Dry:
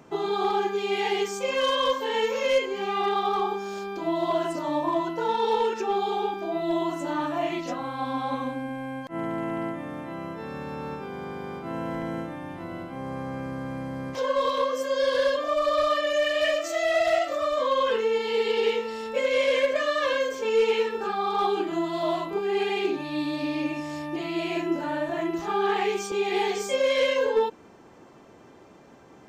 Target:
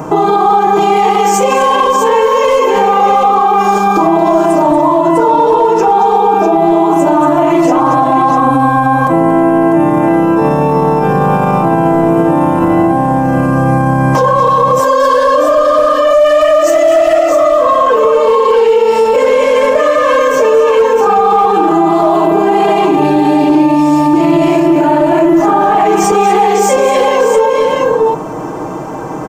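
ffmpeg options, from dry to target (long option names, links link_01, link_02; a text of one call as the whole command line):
ffmpeg -i in.wav -filter_complex "[0:a]equalizer=frequency=3500:width=1.5:gain=-2,aecho=1:1:6.4:0.57,acompressor=threshold=-32dB:ratio=3,asplit=2[link_01][link_02];[link_02]aecho=0:1:120|231|346|648:0.112|0.376|0.106|0.501[link_03];[link_01][link_03]amix=inputs=2:normalize=0,asoftclip=type=hard:threshold=-24dB,equalizer=frequency=1000:width_type=o:width=1:gain=6,equalizer=frequency=2000:width_type=o:width=1:gain=-7,equalizer=frequency=4000:width_type=o:width=1:gain=-10,alimiter=level_in=28dB:limit=-1dB:release=50:level=0:latency=1,volume=-1dB" out.wav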